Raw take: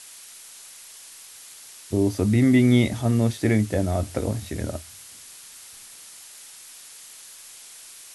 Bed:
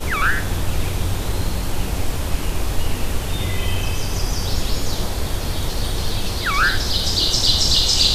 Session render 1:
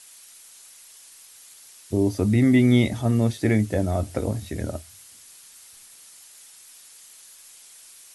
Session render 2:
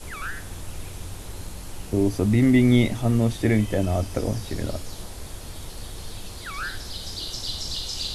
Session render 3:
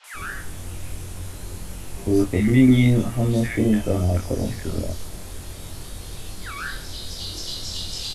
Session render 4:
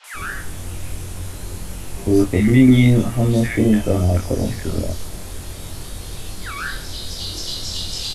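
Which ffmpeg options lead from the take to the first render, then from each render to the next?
-af "afftdn=nr=6:nf=-45"
-filter_complex "[1:a]volume=0.188[s0];[0:a][s0]amix=inputs=2:normalize=0"
-filter_complex "[0:a]asplit=2[s0][s1];[s1]adelay=23,volume=0.75[s2];[s0][s2]amix=inputs=2:normalize=0,acrossover=split=870|4200[s3][s4][s5];[s5]adelay=40[s6];[s3]adelay=140[s7];[s7][s4][s6]amix=inputs=3:normalize=0"
-af "volume=1.58,alimiter=limit=0.708:level=0:latency=1"

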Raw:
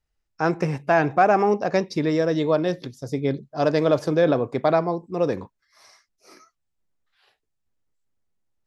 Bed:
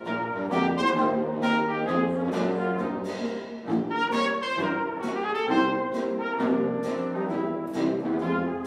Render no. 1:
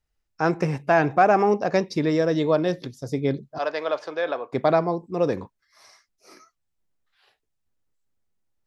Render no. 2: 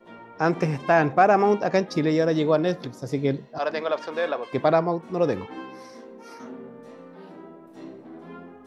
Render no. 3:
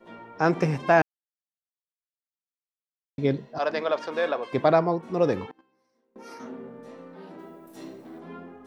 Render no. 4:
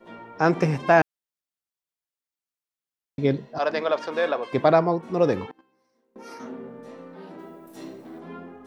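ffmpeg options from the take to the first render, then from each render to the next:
-filter_complex "[0:a]asettb=1/sr,asplit=3[s0][s1][s2];[s0]atrim=end=3.584[s3];[s1]atrim=start=3.58:end=4.53,asetpts=PTS-STARTPTS,afade=t=in:d=0.004:c=qsin,afade=t=out:st=0.946:d=0.004:c=qsin,highpass=750,lowpass=3900[s4];[s2]atrim=start=4.526[s5];[s3][s4]acrossfade=d=0.004:c1=hsin:c2=qsin[s6];[s6][s5]acrossfade=d=0.004:c1=qsin:c2=hsin"
-filter_complex "[1:a]volume=0.168[s0];[0:a][s0]amix=inputs=2:normalize=0"
-filter_complex "[0:a]asettb=1/sr,asplit=3[s0][s1][s2];[s0]atrim=end=5.514[s3];[s1]atrim=start=5.51:end=6.16,asetpts=PTS-STARTPTS,afade=t=in:d=0.004:c=qsin,afade=t=out:st=0.646:d=0.004:c=qsin,agate=range=0.0355:threshold=0.0251:ratio=16:release=100:detection=peak[s4];[s2]atrim=start=6.156[s5];[s3][s4]acrossfade=d=0.004:c1=hsin:c2=qsin[s6];[s6][s5]acrossfade=d=0.004:c1=qsin:c2=hsin,asplit=3[s7][s8][s9];[s7]afade=t=out:st=7.38:d=0.02[s10];[s8]aemphasis=mode=production:type=75fm,afade=t=in:st=7.38:d=0.02,afade=t=out:st=8.18:d=0.02[s11];[s9]afade=t=in:st=8.18:d=0.02[s12];[s10][s11][s12]amix=inputs=3:normalize=0,asplit=3[s13][s14][s15];[s13]atrim=end=1.02,asetpts=PTS-STARTPTS,afade=t=out:st=1.016:d=0.004:c=hsin[s16];[s14]atrim=start=1.02:end=3.18,asetpts=PTS-STARTPTS,volume=0[s17];[s15]atrim=start=3.18,asetpts=PTS-STARTPTS,afade=t=in:d=0.004:c=hsin[s18];[s16][s17][s18]concat=n=3:v=0:a=1"
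-af "volume=1.26"

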